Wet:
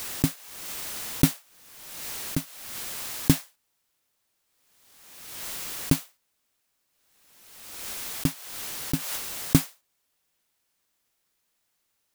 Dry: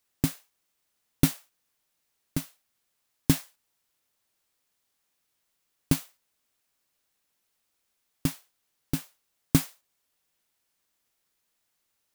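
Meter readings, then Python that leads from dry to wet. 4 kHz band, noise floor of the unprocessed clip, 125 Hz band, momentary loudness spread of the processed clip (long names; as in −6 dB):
+5.5 dB, −78 dBFS, +2.0 dB, 16 LU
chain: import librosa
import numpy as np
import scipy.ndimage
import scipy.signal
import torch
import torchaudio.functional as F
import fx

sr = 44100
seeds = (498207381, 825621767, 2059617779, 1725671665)

y = fx.pre_swell(x, sr, db_per_s=40.0)
y = F.gain(torch.from_numpy(y), 2.0).numpy()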